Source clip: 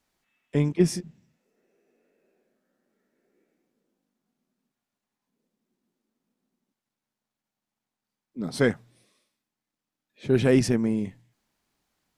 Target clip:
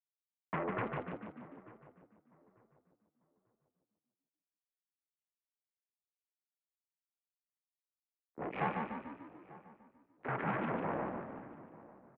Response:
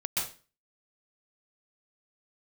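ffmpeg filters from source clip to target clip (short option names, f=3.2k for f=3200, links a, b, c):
-filter_complex "[0:a]aemphasis=mode=reproduction:type=bsi,agate=range=-33dB:threshold=-48dB:ratio=3:detection=peak,equalizer=f=550:w=4.5:g=-9,aecho=1:1:2:0.76,acompressor=threshold=-22dB:ratio=12,acrusher=bits=4:mix=0:aa=0.5,asetrate=26222,aresample=44100,atempo=1.68179,asplit=2[a][b];[b]asplit=6[c][d][e][f][g][h];[c]adelay=147,afreqshift=32,volume=-5dB[i];[d]adelay=294,afreqshift=64,volume=-11dB[j];[e]adelay=441,afreqshift=96,volume=-17dB[k];[f]adelay=588,afreqshift=128,volume=-23.1dB[l];[g]adelay=735,afreqshift=160,volume=-29.1dB[m];[h]adelay=882,afreqshift=192,volume=-35.1dB[n];[i][j][k][l][m][n]amix=inputs=6:normalize=0[o];[a][o]amix=inputs=2:normalize=0,highpass=f=400:t=q:w=0.5412,highpass=f=400:t=q:w=1.307,lowpass=f=2.5k:t=q:w=0.5176,lowpass=f=2.5k:t=q:w=0.7071,lowpass=f=2.5k:t=q:w=1.932,afreqshift=-100,asplit=2[p][q];[q]adelay=894,lowpass=f=1.3k:p=1,volume=-19dB,asplit=2[r][s];[s]adelay=894,lowpass=f=1.3k:p=1,volume=0.3,asplit=2[t][u];[u]adelay=894,lowpass=f=1.3k:p=1,volume=0.3[v];[r][t][v]amix=inputs=3:normalize=0[w];[p][w]amix=inputs=2:normalize=0,volume=3dB"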